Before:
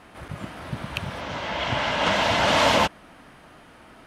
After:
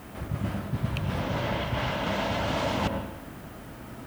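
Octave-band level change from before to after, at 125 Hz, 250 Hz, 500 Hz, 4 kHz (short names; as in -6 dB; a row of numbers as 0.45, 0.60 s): +3.5, 0.0, -5.5, -10.5 dB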